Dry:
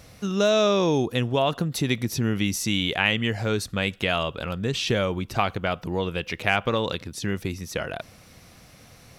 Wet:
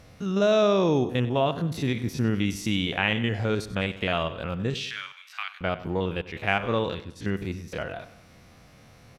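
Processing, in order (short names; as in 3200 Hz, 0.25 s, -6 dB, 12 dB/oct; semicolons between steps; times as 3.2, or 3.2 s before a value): stepped spectrum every 50 ms; 4.74–5.61 inverse Chebyshev high-pass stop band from 330 Hz, stop band 70 dB; 6.21–7.72 expander -32 dBFS; high shelf 4400 Hz -10 dB; feedback echo 96 ms, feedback 44%, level -15.5 dB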